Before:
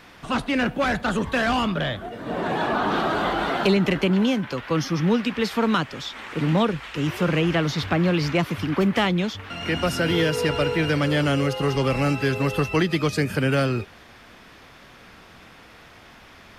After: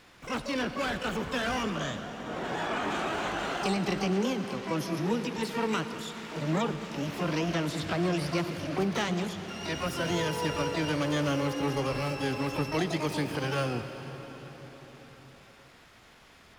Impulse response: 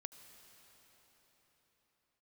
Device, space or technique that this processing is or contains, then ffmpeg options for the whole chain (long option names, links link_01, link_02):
shimmer-style reverb: -filter_complex "[0:a]asplit=2[link_01][link_02];[link_02]asetrate=88200,aresample=44100,atempo=0.5,volume=-5dB[link_03];[link_01][link_03]amix=inputs=2:normalize=0[link_04];[1:a]atrim=start_sample=2205[link_05];[link_04][link_05]afir=irnorm=-1:irlink=0,volume=-4.5dB"